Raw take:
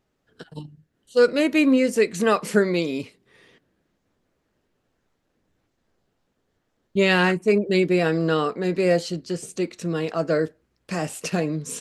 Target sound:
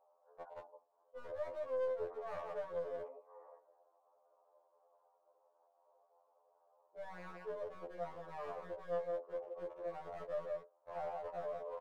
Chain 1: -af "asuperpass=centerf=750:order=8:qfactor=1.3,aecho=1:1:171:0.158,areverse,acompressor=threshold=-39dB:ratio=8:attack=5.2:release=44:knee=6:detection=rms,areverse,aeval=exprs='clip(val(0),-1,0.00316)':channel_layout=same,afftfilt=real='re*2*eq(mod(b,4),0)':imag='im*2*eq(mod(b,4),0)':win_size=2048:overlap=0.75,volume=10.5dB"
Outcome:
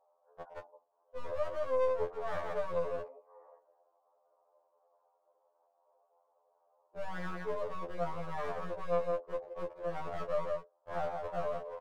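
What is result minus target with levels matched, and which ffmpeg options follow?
downward compressor: peak gain reduction −9 dB
-af "asuperpass=centerf=750:order=8:qfactor=1.3,aecho=1:1:171:0.158,areverse,acompressor=threshold=-49dB:ratio=8:attack=5.2:release=44:knee=6:detection=rms,areverse,aeval=exprs='clip(val(0),-1,0.00316)':channel_layout=same,afftfilt=real='re*2*eq(mod(b,4),0)':imag='im*2*eq(mod(b,4),0)':win_size=2048:overlap=0.75,volume=10.5dB"

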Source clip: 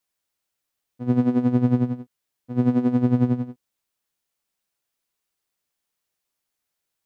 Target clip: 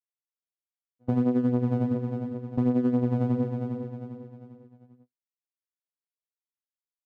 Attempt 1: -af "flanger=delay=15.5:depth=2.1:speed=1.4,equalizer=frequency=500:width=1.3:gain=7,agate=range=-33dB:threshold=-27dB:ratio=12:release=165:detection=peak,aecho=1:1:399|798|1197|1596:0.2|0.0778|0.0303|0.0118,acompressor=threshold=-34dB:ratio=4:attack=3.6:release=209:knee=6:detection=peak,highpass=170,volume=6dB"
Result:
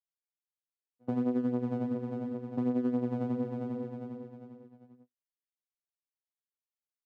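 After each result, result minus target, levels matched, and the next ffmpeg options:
downward compressor: peak gain reduction +5 dB; 125 Hz band −4.5 dB
-af "flanger=delay=15.5:depth=2.1:speed=1.4,equalizer=frequency=500:width=1.3:gain=7,agate=range=-33dB:threshold=-27dB:ratio=12:release=165:detection=peak,aecho=1:1:399|798|1197|1596:0.2|0.0778|0.0303|0.0118,acompressor=threshold=-27.5dB:ratio=4:attack=3.6:release=209:knee=6:detection=peak,highpass=170,volume=6dB"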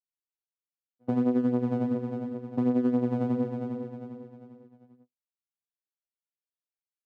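125 Hz band −5.0 dB
-af "flanger=delay=15.5:depth=2.1:speed=1.4,equalizer=frequency=500:width=1.3:gain=7,agate=range=-33dB:threshold=-27dB:ratio=12:release=165:detection=peak,aecho=1:1:399|798|1197|1596:0.2|0.0778|0.0303|0.0118,acompressor=threshold=-27.5dB:ratio=4:attack=3.6:release=209:knee=6:detection=peak,volume=6dB"

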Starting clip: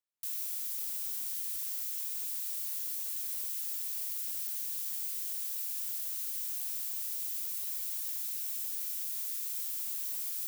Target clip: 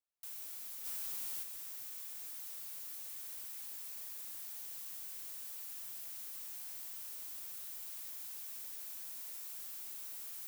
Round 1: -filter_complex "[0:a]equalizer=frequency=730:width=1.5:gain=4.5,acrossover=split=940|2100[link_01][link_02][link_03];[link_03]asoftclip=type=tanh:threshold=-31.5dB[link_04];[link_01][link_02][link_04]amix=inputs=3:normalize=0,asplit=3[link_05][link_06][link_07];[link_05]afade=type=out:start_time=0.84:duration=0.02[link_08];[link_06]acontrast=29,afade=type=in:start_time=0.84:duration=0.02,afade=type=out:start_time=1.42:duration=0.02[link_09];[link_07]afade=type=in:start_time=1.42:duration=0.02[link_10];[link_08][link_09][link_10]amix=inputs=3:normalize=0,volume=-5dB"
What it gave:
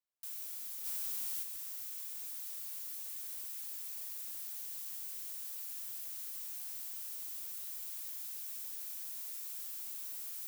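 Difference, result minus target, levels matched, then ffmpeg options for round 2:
soft clipping: distortion −6 dB
-filter_complex "[0:a]equalizer=frequency=730:width=1.5:gain=4.5,acrossover=split=940|2100[link_01][link_02][link_03];[link_03]asoftclip=type=tanh:threshold=-37.5dB[link_04];[link_01][link_02][link_04]amix=inputs=3:normalize=0,asplit=3[link_05][link_06][link_07];[link_05]afade=type=out:start_time=0.84:duration=0.02[link_08];[link_06]acontrast=29,afade=type=in:start_time=0.84:duration=0.02,afade=type=out:start_time=1.42:duration=0.02[link_09];[link_07]afade=type=in:start_time=1.42:duration=0.02[link_10];[link_08][link_09][link_10]amix=inputs=3:normalize=0,volume=-5dB"

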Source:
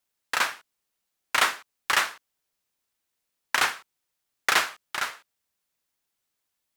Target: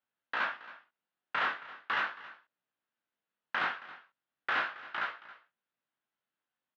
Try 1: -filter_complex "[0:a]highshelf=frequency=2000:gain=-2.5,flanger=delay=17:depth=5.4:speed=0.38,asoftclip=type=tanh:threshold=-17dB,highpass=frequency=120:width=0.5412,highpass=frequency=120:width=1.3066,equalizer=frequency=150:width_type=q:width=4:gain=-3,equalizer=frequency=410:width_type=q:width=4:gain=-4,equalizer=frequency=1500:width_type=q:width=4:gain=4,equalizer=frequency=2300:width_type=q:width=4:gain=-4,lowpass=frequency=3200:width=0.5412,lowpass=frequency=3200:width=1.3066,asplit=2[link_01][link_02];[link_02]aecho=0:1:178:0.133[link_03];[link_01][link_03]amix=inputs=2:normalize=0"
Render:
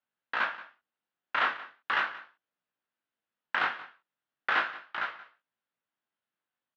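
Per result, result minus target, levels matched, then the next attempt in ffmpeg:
echo 95 ms early; soft clipping: distortion −10 dB
-filter_complex "[0:a]highshelf=frequency=2000:gain=-2.5,flanger=delay=17:depth=5.4:speed=0.38,asoftclip=type=tanh:threshold=-17dB,highpass=frequency=120:width=0.5412,highpass=frequency=120:width=1.3066,equalizer=frequency=150:width_type=q:width=4:gain=-3,equalizer=frequency=410:width_type=q:width=4:gain=-4,equalizer=frequency=1500:width_type=q:width=4:gain=4,equalizer=frequency=2300:width_type=q:width=4:gain=-4,lowpass=frequency=3200:width=0.5412,lowpass=frequency=3200:width=1.3066,asplit=2[link_01][link_02];[link_02]aecho=0:1:273:0.133[link_03];[link_01][link_03]amix=inputs=2:normalize=0"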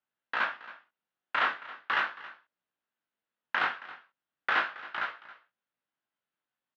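soft clipping: distortion −10 dB
-filter_complex "[0:a]highshelf=frequency=2000:gain=-2.5,flanger=delay=17:depth=5.4:speed=0.38,asoftclip=type=tanh:threshold=-26dB,highpass=frequency=120:width=0.5412,highpass=frequency=120:width=1.3066,equalizer=frequency=150:width_type=q:width=4:gain=-3,equalizer=frequency=410:width_type=q:width=4:gain=-4,equalizer=frequency=1500:width_type=q:width=4:gain=4,equalizer=frequency=2300:width_type=q:width=4:gain=-4,lowpass=frequency=3200:width=0.5412,lowpass=frequency=3200:width=1.3066,asplit=2[link_01][link_02];[link_02]aecho=0:1:273:0.133[link_03];[link_01][link_03]amix=inputs=2:normalize=0"

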